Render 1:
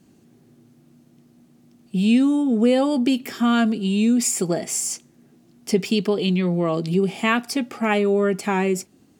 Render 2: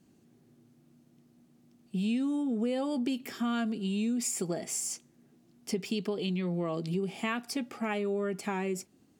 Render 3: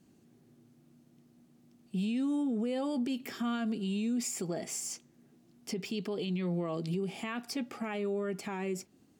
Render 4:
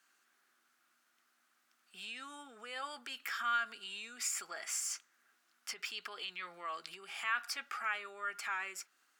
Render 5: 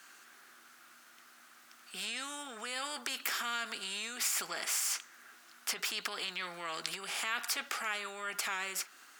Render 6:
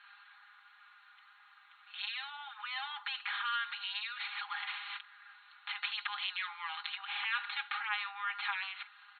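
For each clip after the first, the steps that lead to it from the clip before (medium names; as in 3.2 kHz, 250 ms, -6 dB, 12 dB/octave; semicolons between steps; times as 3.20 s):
compression 3:1, threshold -20 dBFS, peak gain reduction 6 dB; trim -8.5 dB
dynamic bell 9.8 kHz, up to -6 dB, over -53 dBFS, Q 1.1; peak limiter -26 dBFS, peak gain reduction 7 dB
resonant high-pass 1.4 kHz, resonance Q 3.9
spectrum-flattening compressor 2:1; trim +7.5 dB
comb 4.9 ms, depth 93%; FFT band-pass 770–4300 Hz; trim -2 dB; Opus 48 kbps 48 kHz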